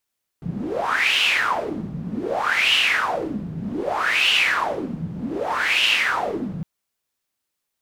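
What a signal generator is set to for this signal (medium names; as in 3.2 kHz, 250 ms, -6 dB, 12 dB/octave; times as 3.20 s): wind-like swept noise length 6.21 s, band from 160 Hz, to 2.9 kHz, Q 6.7, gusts 4, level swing 11 dB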